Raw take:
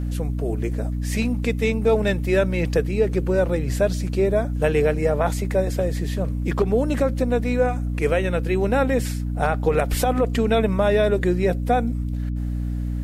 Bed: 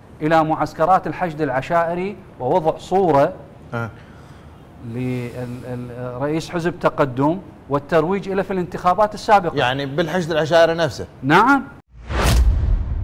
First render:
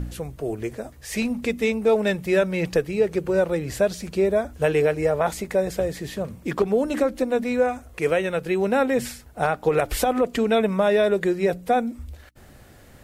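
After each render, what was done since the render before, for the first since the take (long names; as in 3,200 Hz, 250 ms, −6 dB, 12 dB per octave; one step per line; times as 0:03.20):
hum removal 60 Hz, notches 5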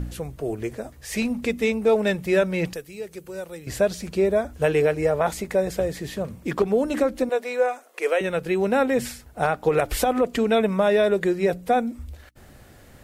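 0:02.73–0:03.67: first-order pre-emphasis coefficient 0.8
0:07.29–0:08.21: high-pass filter 390 Hz 24 dB per octave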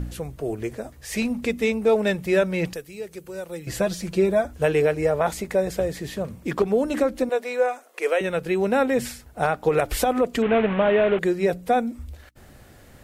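0:03.49–0:04.46: comb filter 5.9 ms
0:10.42–0:11.19: linear delta modulator 16 kbit/s, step −23 dBFS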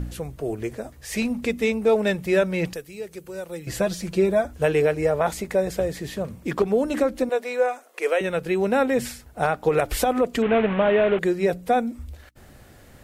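no processing that can be heard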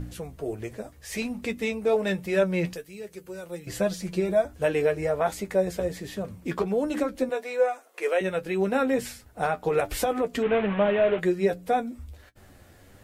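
flanger 1.3 Hz, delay 9.5 ms, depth 2.3 ms, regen +38%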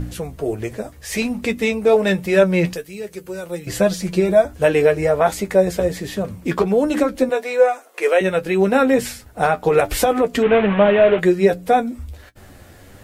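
level +9 dB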